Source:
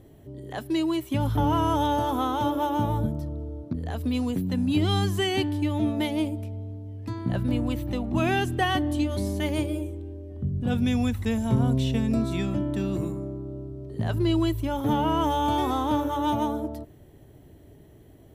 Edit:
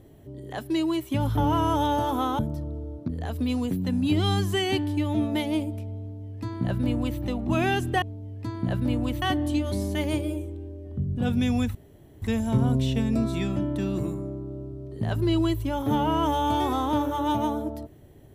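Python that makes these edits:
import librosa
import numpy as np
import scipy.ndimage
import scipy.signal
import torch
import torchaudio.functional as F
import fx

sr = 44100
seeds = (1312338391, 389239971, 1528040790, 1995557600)

y = fx.edit(x, sr, fx.cut(start_s=2.39, length_s=0.65),
    fx.duplicate(start_s=6.65, length_s=1.2, to_s=8.67),
    fx.insert_room_tone(at_s=11.2, length_s=0.47), tone=tone)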